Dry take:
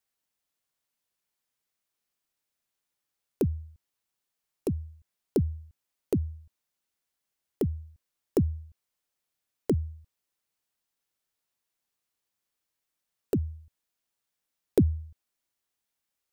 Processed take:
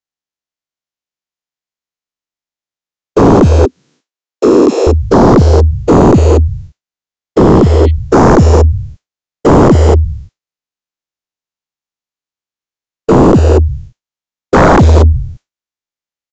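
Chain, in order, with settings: spectral dilation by 0.48 s; expander -45 dBFS; 3.65–4.87 steep high-pass 250 Hz 36 dB/oct; 7.52–7.88 spectral repair 1900–4500 Hz before; in parallel at +0.5 dB: compressor, threshold -27 dBFS, peak gain reduction 17 dB; on the sum: sine folder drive 14 dB, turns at 0.5 dBFS; downsampling 16000 Hz; gain -2 dB

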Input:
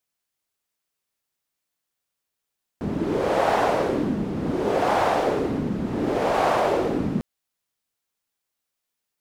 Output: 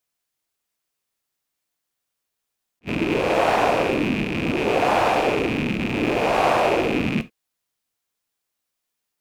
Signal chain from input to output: rattling part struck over -36 dBFS, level -18 dBFS; non-linear reverb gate 0.1 s falling, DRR 11.5 dB; attack slew limiter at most 600 dB/s; gain +1.5 dB

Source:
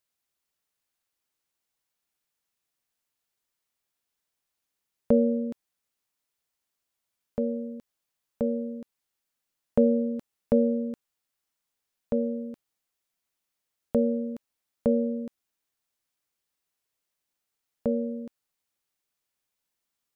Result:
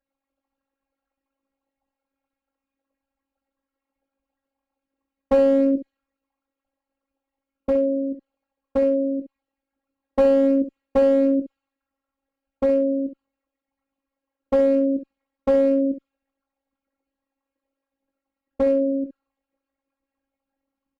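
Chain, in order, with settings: formant sharpening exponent 3; in parallel at -1.5 dB: limiter -23 dBFS, peak gain reduction 11 dB; on the sum: low-pass opened by the level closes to 1000 Hz, open at -19 dBFS; robotiser 284 Hz; one-sided clip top -24 dBFS; on a send: early reflections 18 ms -5.5 dB, 63 ms -9.5 dB; on the sum: speed mistake 25 fps video run at 24 fps; gain +8 dB

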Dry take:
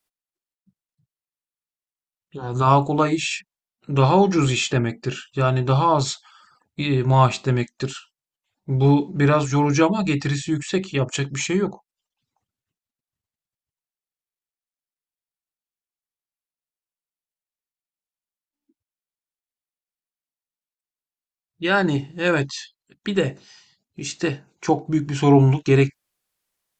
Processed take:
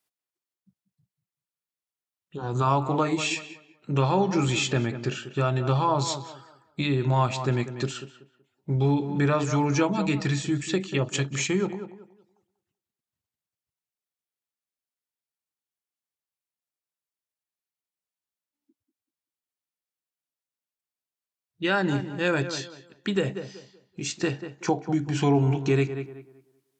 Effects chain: HPF 61 Hz; tape echo 0.19 s, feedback 29%, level -12 dB, low-pass 2000 Hz; compressor 2:1, threshold -21 dBFS, peak gain reduction 7 dB; gain -1.5 dB

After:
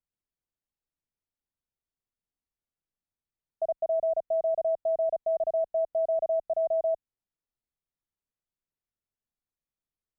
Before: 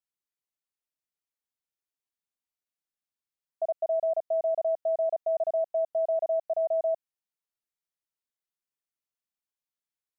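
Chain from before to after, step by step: tilt -3.5 dB/oct; gain -2 dB

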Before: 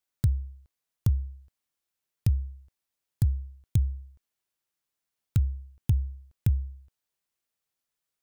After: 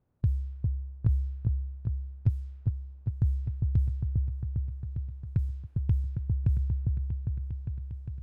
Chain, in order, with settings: per-bin compression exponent 0.6; low-pass opened by the level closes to 730 Hz, open at -18.5 dBFS; repeats that get brighter 0.403 s, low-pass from 750 Hz, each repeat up 1 oct, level -3 dB; gain -3.5 dB

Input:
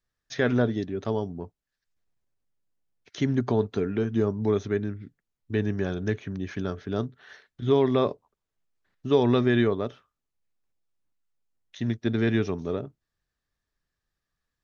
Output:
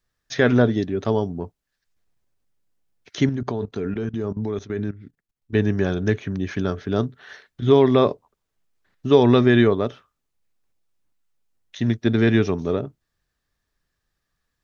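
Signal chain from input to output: 3.29–5.55 level quantiser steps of 16 dB; gain +6.5 dB

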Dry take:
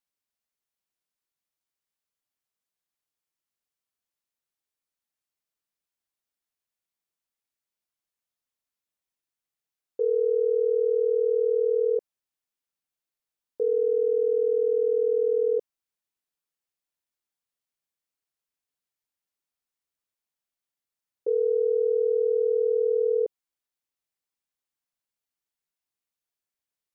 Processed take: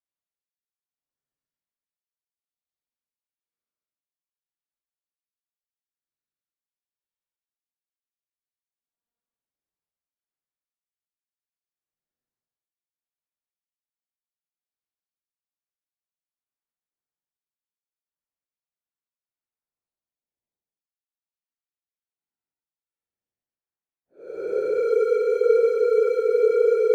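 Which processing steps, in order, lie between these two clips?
median filter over 41 samples; Paulstretch 20×, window 0.05 s, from 12.37; gain +5 dB

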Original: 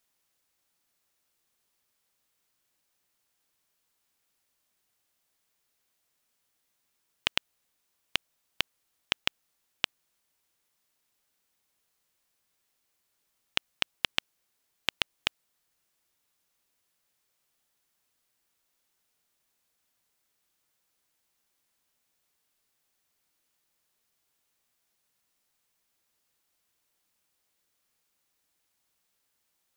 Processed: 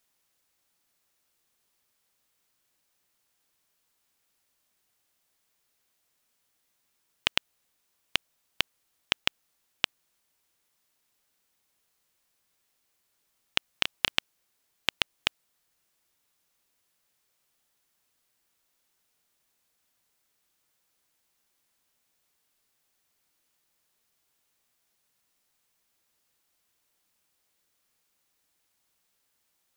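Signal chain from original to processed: 13.71–14.16 doubler 32 ms -7 dB; gain +2 dB

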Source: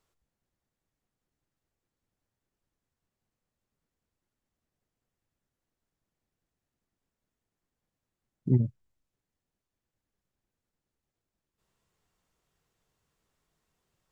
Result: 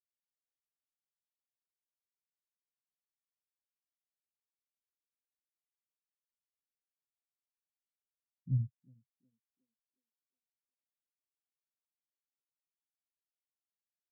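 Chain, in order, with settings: soft clip -23 dBFS, distortion -9 dB; narrowing echo 0.364 s, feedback 78%, band-pass 410 Hz, level -6 dB; spectral expander 2.5:1

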